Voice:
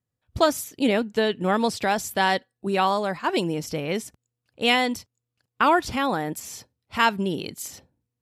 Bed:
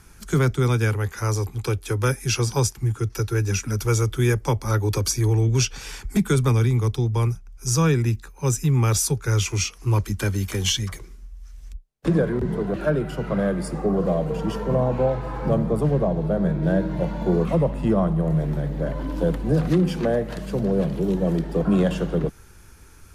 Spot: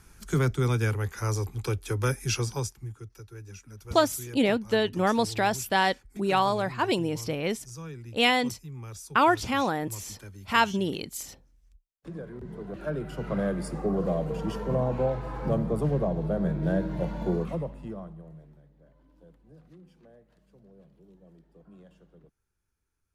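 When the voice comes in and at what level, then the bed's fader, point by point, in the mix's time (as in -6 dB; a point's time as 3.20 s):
3.55 s, -2.0 dB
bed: 2.34 s -5 dB
3.20 s -21.5 dB
12.00 s -21.5 dB
13.28 s -5.5 dB
17.25 s -5.5 dB
18.73 s -33.5 dB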